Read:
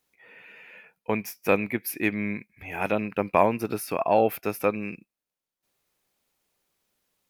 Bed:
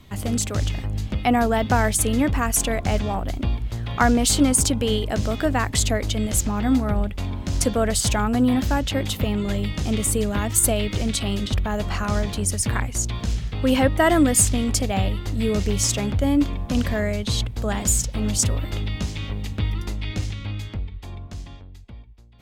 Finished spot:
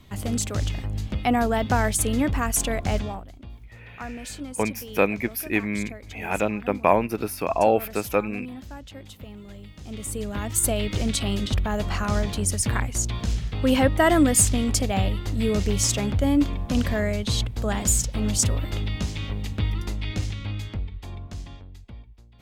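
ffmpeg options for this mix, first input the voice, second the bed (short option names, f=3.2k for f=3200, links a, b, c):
-filter_complex "[0:a]adelay=3500,volume=1.5dB[a];[1:a]volume=14.5dB,afade=t=out:st=2.96:d=0.31:silence=0.16788,afade=t=in:st=9.77:d=1.26:silence=0.141254[b];[a][b]amix=inputs=2:normalize=0"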